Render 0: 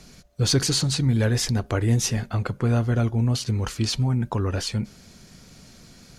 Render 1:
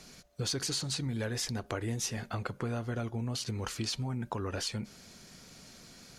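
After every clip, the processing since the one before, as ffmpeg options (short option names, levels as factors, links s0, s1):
-af "lowshelf=f=200:g=-9.5,acompressor=threshold=0.0316:ratio=4,volume=0.794"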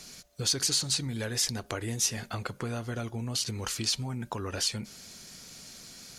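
-af "highshelf=f=2900:g=9.5"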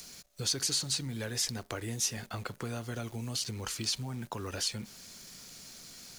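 -filter_complex "[0:a]acrossover=split=260|3100[s0][s1][s2];[s2]acompressor=mode=upward:threshold=0.00708:ratio=2.5[s3];[s0][s1][s3]amix=inputs=3:normalize=0,acrusher=bits=9:dc=4:mix=0:aa=0.000001,volume=0.668"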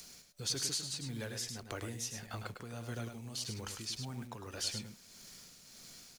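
-filter_complex "[0:a]tremolo=f=1.7:d=0.49,asplit=2[s0][s1];[s1]aecho=0:1:103:0.447[s2];[s0][s2]amix=inputs=2:normalize=0,volume=0.631"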